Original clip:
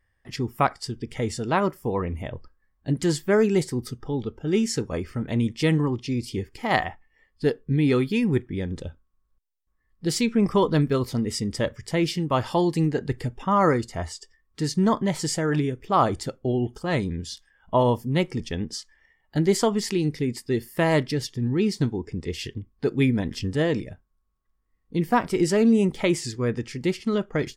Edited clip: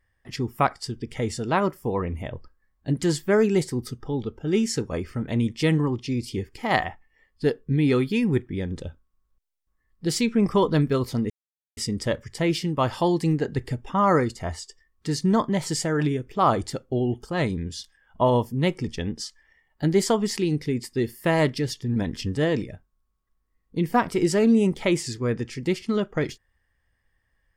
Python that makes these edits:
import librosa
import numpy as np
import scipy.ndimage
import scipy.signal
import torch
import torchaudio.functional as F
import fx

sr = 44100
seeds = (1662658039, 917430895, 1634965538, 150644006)

y = fx.edit(x, sr, fx.insert_silence(at_s=11.3, length_s=0.47),
    fx.cut(start_s=21.49, length_s=1.65), tone=tone)